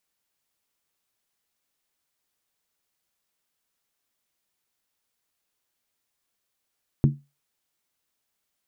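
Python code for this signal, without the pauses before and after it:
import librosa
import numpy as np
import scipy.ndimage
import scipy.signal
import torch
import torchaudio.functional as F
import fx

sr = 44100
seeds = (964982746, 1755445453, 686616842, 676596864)

y = fx.strike_skin(sr, length_s=0.63, level_db=-11.5, hz=142.0, decay_s=0.25, tilt_db=6, modes=5)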